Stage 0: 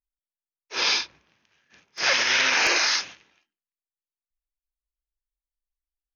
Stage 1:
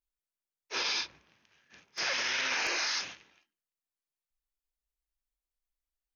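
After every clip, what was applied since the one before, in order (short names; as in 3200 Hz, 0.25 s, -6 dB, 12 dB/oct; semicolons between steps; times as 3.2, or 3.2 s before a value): limiter -21.5 dBFS, peak gain reduction 11.5 dB; gain -1 dB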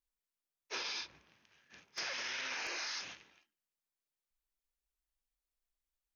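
compressor, threshold -36 dBFS, peak gain reduction 8 dB; gain -1.5 dB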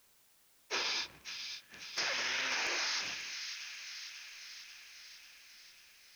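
thin delay 0.542 s, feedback 65%, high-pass 2100 Hz, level -7 dB; requantised 12-bit, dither triangular; gain +5 dB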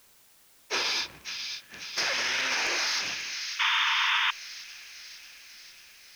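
in parallel at -6 dB: soft clip -35.5 dBFS, distortion -10 dB; on the sum: painted sound noise, 3.59–4.31, 880–3700 Hz -30 dBFS; gain +4.5 dB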